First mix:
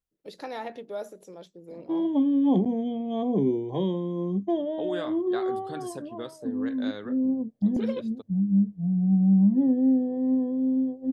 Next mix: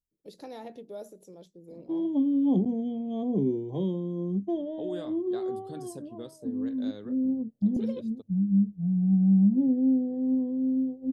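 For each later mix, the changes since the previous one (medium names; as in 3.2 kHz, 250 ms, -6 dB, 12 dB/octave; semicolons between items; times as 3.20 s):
master: add peaking EQ 1.6 kHz -14 dB 2.6 oct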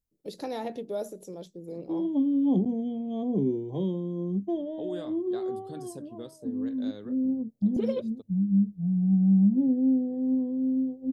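first voice +8.0 dB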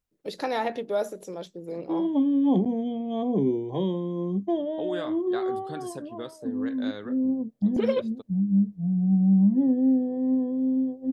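second voice: remove hum notches 50/100/150 Hz; master: add peaking EQ 1.6 kHz +14 dB 2.6 oct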